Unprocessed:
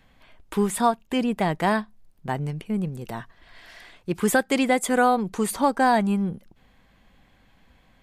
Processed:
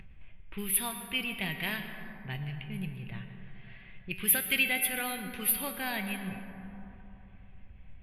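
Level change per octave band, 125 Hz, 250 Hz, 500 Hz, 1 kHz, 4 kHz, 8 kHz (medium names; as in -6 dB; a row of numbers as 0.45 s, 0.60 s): -9.0 dB, -14.5 dB, -19.0 dB, -18.5 dB, +0.5 dB, +0.5 dB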